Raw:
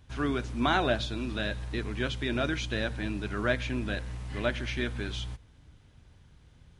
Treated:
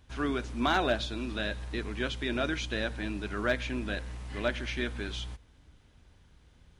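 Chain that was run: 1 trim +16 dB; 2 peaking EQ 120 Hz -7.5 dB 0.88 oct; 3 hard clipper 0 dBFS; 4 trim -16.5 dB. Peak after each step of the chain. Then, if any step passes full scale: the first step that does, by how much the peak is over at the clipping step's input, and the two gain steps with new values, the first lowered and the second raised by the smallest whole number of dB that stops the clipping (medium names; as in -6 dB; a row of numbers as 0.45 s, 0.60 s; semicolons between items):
+4.0 dBFS, +4.0 dBFS, 0.0 dBFS, -16.5 dBFS; step 1, 4.0 dB; step 1 +12 dB, step 4 -12.5 dB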